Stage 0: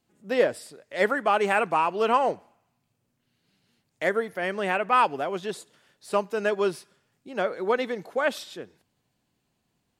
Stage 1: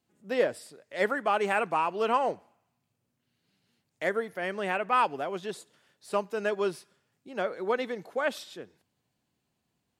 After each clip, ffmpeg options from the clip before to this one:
-af "highpass=44,volume=-4dB"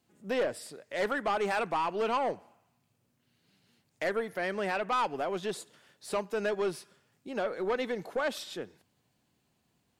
-filter_complex "[0:a]asplit=2[a][b];[b]acompressor=threshold=-35dB:ratio=6,volume=2.5dB[c];[a][c]amix=inputs=2:normalize=0,aeval=exprs='(tanh(11.2*val(0)+0.15)-tanh(0.15))/11.2':c=same,volume=-2.5dB"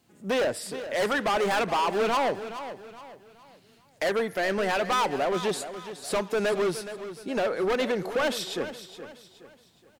-filter_complex "[0:a]volume=30.5dB,asoftclip=hard,volume=-30.5dB,asplit=2[a][b];[b]aecho=0:1:420|840|1260|1680:0.251|0.0929|0.0344|0.0127[c];[a][c]amix=inputs=2:normalize=0,volume=8dB"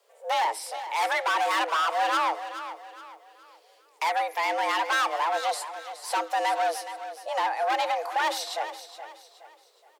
-af "afreqshift=320"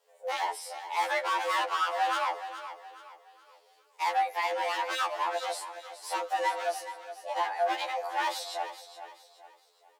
-af "afftfilt=real='re*2*eq(mod(b,4),0)':imag='im*2*eq(mod(b,4),0)':win_size=2048:overlap=0.75,volume=-2dB"

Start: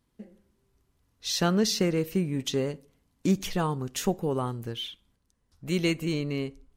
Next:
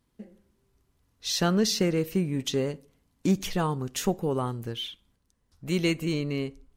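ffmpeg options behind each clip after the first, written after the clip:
-af "acontrast=89,volume=-6.5dB"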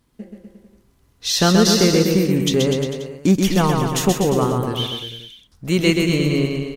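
-af "aecho=1:1:130|247|352.3|447.1|532.4:0.631|0.398|0.251|0.158|0.1,volume=8.5dB"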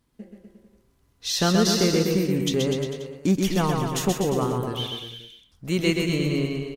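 -filter_complex "[0:a]asplit=2[a][b];[b]adelay=120,highpass=300,lowpass=3.4k,asoftclip=type=hard:threshold=-12dB,volume=-11dB[c];[a][c]amix=inputs=2:normalize=0,volume=-6dB"

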